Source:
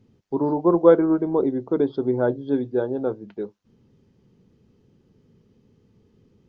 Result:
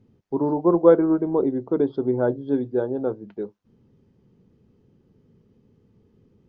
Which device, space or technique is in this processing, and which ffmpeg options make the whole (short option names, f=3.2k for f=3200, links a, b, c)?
behind a face mask: -af "highshelf=f=2.4k:g=-8"